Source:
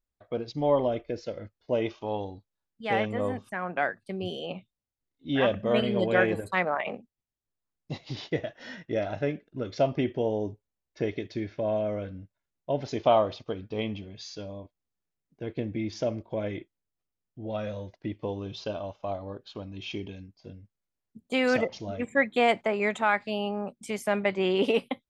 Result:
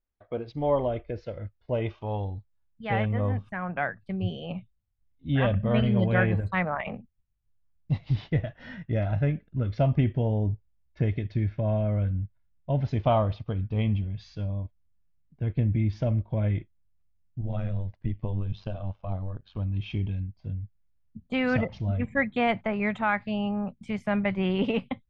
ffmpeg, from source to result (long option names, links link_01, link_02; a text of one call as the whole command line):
ffmpeg -i in.wav -filter_complex "[0:a]asettb=1/sr,asplit=3[link_01][link_02][link_03];[link_01]atrim=end=17.414[link_04];[link_02]atrim=start=17.41:end=19.57,asetpts=PTS-STARTPTS,afade=type=in:duration=0.004:curve=qsin,afade=type=out:start_time=2.156:duration=0.004:curve=qsin,tremolo=f=93:d=0.788[link_05];[link_03]atrim=start=19.566[link_06];[link_04][link_05]acrossfade=duration=0.004:curve1=hsin:curve2=qsin[link_07];[link_07][link_06]acrossfade=duration=0.004:curve1=qsin:curve2=hsin,lowpass=2700,asubboost=boost=11.5:cutoff=110" out.wav